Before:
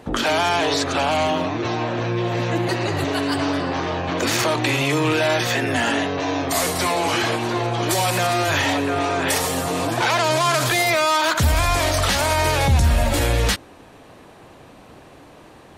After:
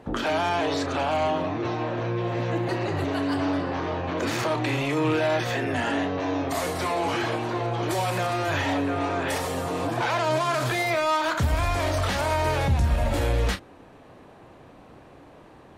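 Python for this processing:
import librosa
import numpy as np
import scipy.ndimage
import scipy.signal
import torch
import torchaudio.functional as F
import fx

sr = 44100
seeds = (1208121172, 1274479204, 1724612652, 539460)

p1 = fx.high_shelf(x, sr, hz=3000.0, db=-10.0)
p2 = 10.0 ** (-20.5 / 20.0) * np.tanh(p1 / 10.0 ** (-20.5 / 20.0))
p3 = p1 + F.gain(torch.from_numpy(p2), -8.0).numpy()
p4 = fx.doubler(p3, sr, ms=32.0, db=-10.5)
y = F.gain(torch.from_numpy(p4), -6.5).numpy()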